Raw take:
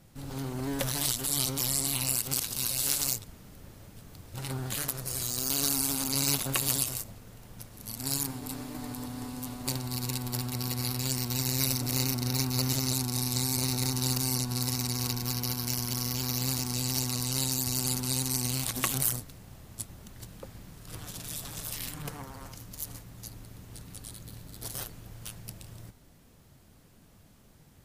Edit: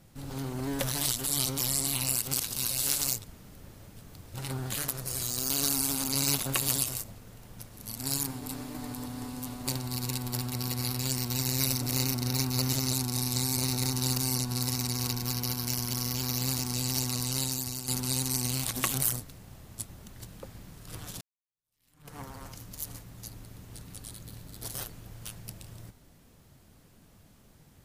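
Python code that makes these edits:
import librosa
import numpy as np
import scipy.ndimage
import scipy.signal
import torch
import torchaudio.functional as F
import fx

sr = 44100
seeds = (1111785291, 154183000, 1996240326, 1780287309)

y = fx.edit(x, sr, fx.fade_out_to(start_s=17.13, length_s=0.75, curve='qsin', floor_db=-10.5),
    fx.fade_in_span(start_s=21.21, length_s=0.97, curve='exp'), tone=tone)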